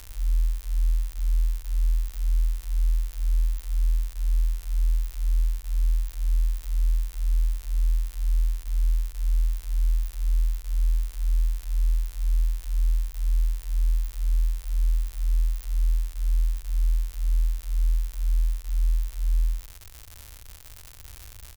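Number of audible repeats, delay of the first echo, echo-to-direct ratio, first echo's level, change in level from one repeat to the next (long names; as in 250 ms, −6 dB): 1, 84 ms, −13.0 dB, −13.0 dB, −13.5 dB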